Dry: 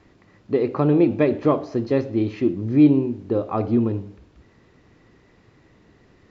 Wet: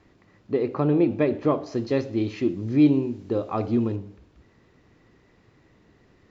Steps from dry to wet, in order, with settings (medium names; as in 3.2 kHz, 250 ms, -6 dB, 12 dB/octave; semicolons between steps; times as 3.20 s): 1.66–3.96 s: treble shelf 3.2 kHz +10.5 dB; trim -3.5 dB